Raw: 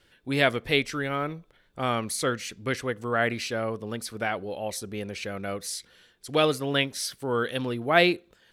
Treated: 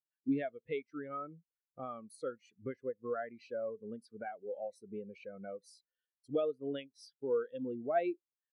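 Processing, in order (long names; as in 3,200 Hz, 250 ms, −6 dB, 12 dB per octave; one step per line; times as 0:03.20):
low-shelf EQ 96 Hz −10.5 dB
downward compressor 3 to 1, threshold −40 dBFS, peak gain reduction 18.5 dB
every bin expanded away from the loudest bin 2.5 to 1
level +1 dB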